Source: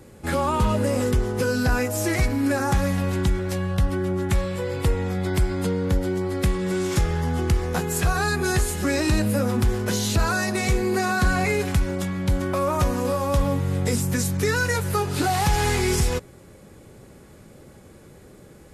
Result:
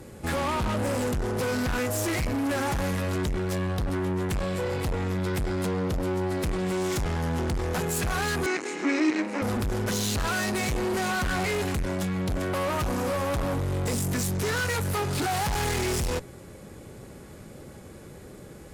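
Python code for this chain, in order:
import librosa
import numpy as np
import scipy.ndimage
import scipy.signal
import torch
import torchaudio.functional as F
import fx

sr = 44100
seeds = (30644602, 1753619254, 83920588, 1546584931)

y = fx.tube_stage(x, sr, drive_db=29.0, bias=0.4)
y = fx.cabinet(y, sr, low_hz=260.0, low_slope=24, high_hz=6200.0, hz=(300.0, 590.0, 2200.0, 3400.0, 4800.0), db=(9, -5, 9, -7, -5), at=(8.46, 9.42))
y = y * 10.0 ** (4.0 / 20.0)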